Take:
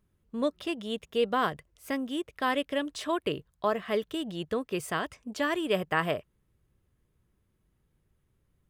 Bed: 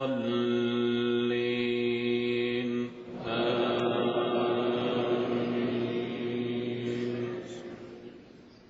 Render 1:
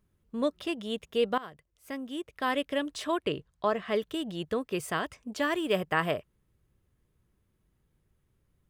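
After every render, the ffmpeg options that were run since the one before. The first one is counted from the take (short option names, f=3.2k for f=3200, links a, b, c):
-filter_complex "[0:a]asplit=3[a][b][c];[a]afade=t=out:st=3.18:d=0.02[d];[b]lowpass=8.2k,afade=t=in:st=3.18:d=0.02,afade=t=out:st=3.94:d=0.02[e];[c]afade=t=in:st=3.94:d=0.02[f];[d][e][f]amix=inputs=3:normalize=0,asettb=1/sr,asplit=3[g][h][i];[g]atrim=end=5.384[j];[h]atrim=start=5.38:end=5.81,asetpts=PTS-STARTPTS,afade=t=in:d=0.004:c=qsin,afade=t=out:st=0.426:d=0.004:c=qsin,acrusher=bits=9:mode=log:mix=0:aa=0.000001[k];[i]atrim=start=5.806[l];[j][k]acrossfade=d=0.004:c1=hsin:c2=qsin[m];[m][l]acrossfade=d=0.004:c1=qsin:c2=hsin,asplit=2[n][o];[n]atrim=end=1.38,asetpts=PTS-STARTPTS,afade=t=out:st=1.376:d=0.004:c=hsin:silence=0.11885[p];[o]atrim=start=1.38,asetpts=PTS-STARTPTS,afade=t=in:d=1.29:silence=0.11885[q];[p][q]concat=n=2:v=0:a=1"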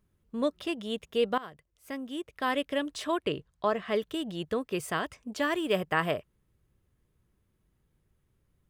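-af anull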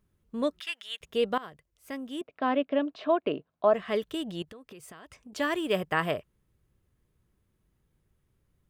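-filter_complex "[0:a]asettb=1/sr,asplit=3[a][b][c];[a]atrim=end=0.604[d];[b]atrim=start=0.6:end=1.01,asetpts=PTS-STARTPTS,afade=t=in:d=0.004:c=qsin,afade=t=out:st=0.406:d=0.004:c=qsin,highpass=f=1.8k:t=q:w=2[e];[c]atrim=start=1.006[f];[d][e]acrossfade=d=0.004:c1=hsin:c2=qsin[g];[g][f]acrossfade=d=0.004:c1=qsin:c2=hsin,asettb=1/sr,asplit=3[h][i][j];[h]atrim=end=2.214[k];[i]atrim=start=2.21:end=3.74,asetpts=PTS-STARTPTS,afade=t=in:d=0.004:c=qsin,afade=t=out:st=1.526:d=0.004:c=qsin,highpass=190,equalizer=f=260:t=q:w=4:g=7,equalizer=f=660:t=q:w=4:g=9,equalizer=f=1.9k:t=q:w=4:g=-7,equalizer=f=3.3k:t=q:w=4:g=-6,lowpass=f=3.5k:w=0.5412,lowpass=f=3.5k:w=1.3066[l];[j]atrim=start=3.736[m];[k][l]acrossfade=d=0.004:c1=hsin:c2=qsin[n];[n][m]acrossfade=d=0.004:c1=qsin:c2=hsin,asettb=1/sr,asplit=3[o][p][q];[o]atrim=end=4.424[r];[p]atrim=start=4.42:end=5.33,asetpts=PTS-STARTPTS,afade=t=in:d=0.004:c=qsin,afade=t=out:st=0.906:d=0.004:c=qsin,acompressor=threshold=-44dB:ratio=12:attack=3.2:release=140:knee=1:detection=peak[s];[q]atrim=start=5.326[t];[r][s]acrossfade=d=0.004:c1=hsin:c2=qsin[u];[u][t]acrossfade=d=0.004:c1=qsin:c2=hsin"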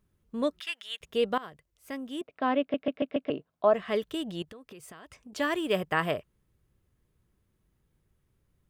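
-filter_complex "[0:a]asplit=6[a][b][c][d][e][f];[a]atrim=end=2.742[g];[b]atrim=start=2.598:end=2.742[h];[c]atrim=start=2.598:end=2.742[i];[d]atrim=start=2.598:end=2.742[j];[e]atrim=start=2.598:end=2.742[k];[f]atrim=start=3.298[l];[g][h]acrossfade=d=0.004:c1=hsin:c2=hsin[m];[m][i]acrossfade=d=0.004:c1=hsin:c2=hsin[n];[n][j]acrossfade=d=0.004:c1=hsin:c2=hsin[o];[o][k]acrossfade=d=0.004:c1=hsin:c2=hsin[p];[p][l]acrossfade=d=0.004:c1=hsin:c2=hsin"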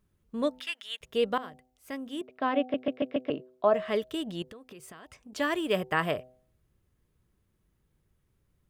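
-af "bandreject=f=126.9:t=h:w=4,bandreject=f=253.8:t=h:w=4,bandreject=f=380.7:t=h:w=4,bandreject=f=507.6:t=h:w=4,bandreject=f=634.5:t=h:w=4,bandreject=f=761.4:t=h:w=4,bandreject=f=888.3:t=h:w=4"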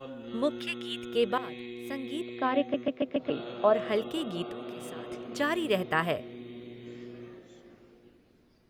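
-filter_complex "[1:a]volume=-12dB[a];[0:a][a]amix=inputs=2:normalize=0"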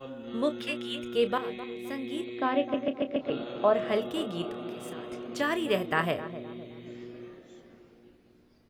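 -filter_complex "[0:a]asplit=2[a][b];[b]adelay=30,volume=-11.5dB[c];[a][c]amix=inputs=2:normalize=0,asplit=2[d][e];[e]adelay=259,lowpass=f=890:p=1,volume=-11dB,asplit=2[f][g];[g]adelay=259,lowpass=f=890:p=1,volume=0.52,asplit=2[h][i];[i]adelay=259,lowpass=f=890:p=1,volume=0.52,asplit=2[j][k];[k]adelay=259,lowpass=f=890:p=1,volume=0.52,asplit=2[l][m];[m]adelay=259,lowpass=f=890:p=1,volume=0.52,asplit=2[n][o];[o]adelay=259,lowpass=f=890:p=1,volume=0.52[p];[d][f][h][j][l][n][p]amix=inputs=7:normalize=0"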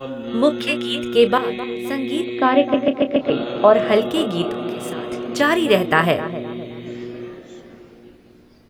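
-af "volume=12dB,alimiter=limit=-1dB:level=0:latency=1"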